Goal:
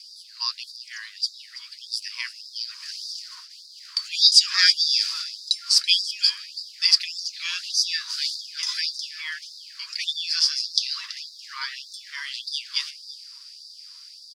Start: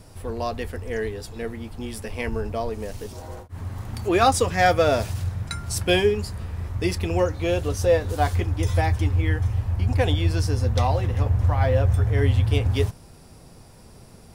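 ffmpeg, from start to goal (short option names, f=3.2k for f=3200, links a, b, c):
-filter_complex "[0:a]acrusher=bits=8:mix=0:aa=0.000001,asettb=1/sr,asplit=3[a][b][c];[a]atrim=end=3.564[d];[b]atrim=start=3.56:end=3.97,asetpts=PTS-STARTPTS,afade=t=in:d=0.004:c=qsin,afade=t=out:st=0.406:d=0.004:c=qsin,acompressor=threshold=-31dB:ratio=6[e];[c]atrim=start=3.966[f];[d][e]acrossfade=d=0.004:c1=hsin:c2=qsin[g];[g][f]acrossfade=d=0.004:c1=qsin:c2=hsin,lowshelf=f=220:g=8,aecho=1:1:330:0.178,dynaudnorm=f=270:g=17:m=11.5dB,lowpass=f=4.8k:t=q:w=9.9,aemphasis=mode=production:type=bsi,afftfilt=real='re*gte(b*sr/1024,920*pow(3600/920,0.5+0.5*sin(2*PI*1.7*pts/sr)))':imag='im*gte(b*sr/1024,920*pow(3600/920,0.5+0.5*sin(2*PI*1.7*pts/sr)))':win_size=1024:overlap=0.75,volume=-4.5dB"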